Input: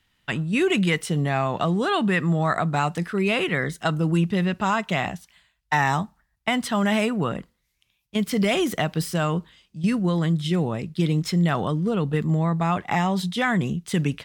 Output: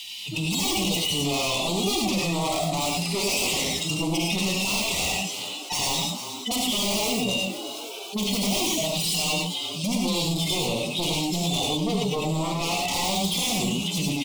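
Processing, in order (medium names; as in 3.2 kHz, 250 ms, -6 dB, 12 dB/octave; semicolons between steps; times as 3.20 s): harmonic-percussive separation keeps harmonic; frequency weighting D; de-esser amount 100%; tilt EQ +3.5 dB/octave; in parallel at -2 dB: peak limiter -21.5 dBFS, peak gain reduction 9 dB; on the sum: wavefolder -24.5 dBFS; Butterworth band-stop 1.6 kHz, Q 1.1; frequency-shifting echo 358 ms, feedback 47%, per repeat +110 Hz, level -19 dB; gated-style reverb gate 130 ms rising, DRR -1 dB; level flattener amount 50%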